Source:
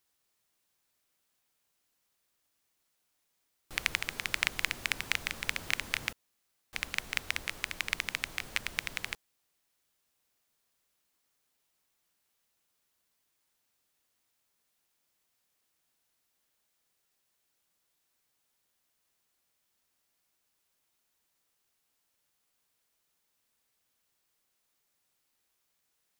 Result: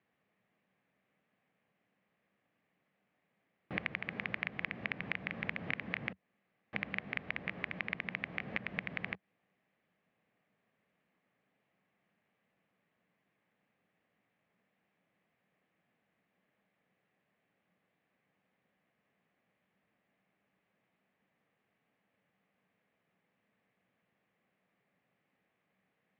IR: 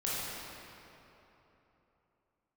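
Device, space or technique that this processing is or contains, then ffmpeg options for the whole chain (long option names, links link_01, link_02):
bass amplifier: -af "acompressor=threshold=-37dB:ratio=4,highpass=frequency=82:width=0.5412,highpass=frequency=82:width=1.3066,equalizer=frequency=86:width_type=q:width=4:gain=-9,equalizer=frequency=190:width_type=q:width=4:gain=9,equalizer=frequency=360:width_type=q:width=4:gain=-4,equalizer=frequency=950:width_type=q:width=4:gain=-8,equalizer=frequency=1400:width_type=q:width=4:gain=-9,lowpass=frequency=2100:width=0.5412,lowpass=frequency=2100:width=1.3066,volume=10dB"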